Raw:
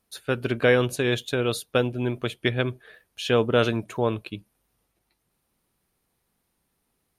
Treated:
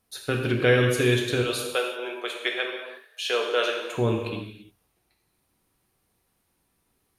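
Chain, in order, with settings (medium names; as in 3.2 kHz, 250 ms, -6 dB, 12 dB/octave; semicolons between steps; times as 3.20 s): 1.42–3.94 s: high-pass 480 Hz 24 dB/octave; gated-style reverb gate 370 ms falling, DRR 0.5 dB; dynamic bell 800 Hz, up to -7 dB, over -36 dBFS, Q 1.2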